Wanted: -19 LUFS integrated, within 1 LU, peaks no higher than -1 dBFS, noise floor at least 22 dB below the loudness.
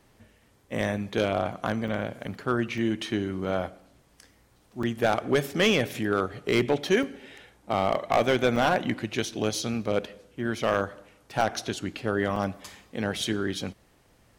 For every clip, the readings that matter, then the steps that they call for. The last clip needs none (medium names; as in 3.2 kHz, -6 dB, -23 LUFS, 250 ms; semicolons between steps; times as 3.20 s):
clipped samples 0.3%; clipping level -14.5 dBFS; dropouts 8; longest dropout 3.4 ms; loudness -27.5 LUFS; peak level -14.5 dBFS; loudness target -19.0 LUFS
-> clip repair -14.5 dBFS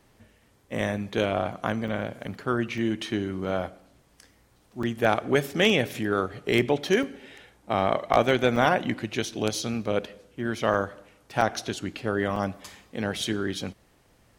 clipped samples 0.0%; dropouts 8; longest dropout 3.4 ms
-> interpolate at 1.88/2.78/4.83/7.03/8.56/10.74/11.41/12.36 s, 3.4 ms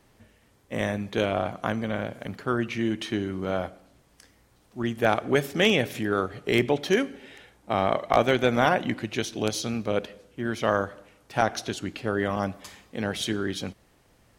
dropouts 0; loudness -27.0 LUFS; peak level -5.5 dBFS; loudness target -19.0 LUFS
-> trim +8 dB; peak limiter -1 dBFS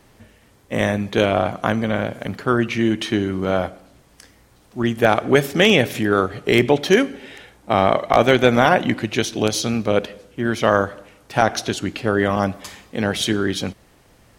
loudness -19.5 LUFS; peak level -1.0 dBFS; noise floor -54 dBFS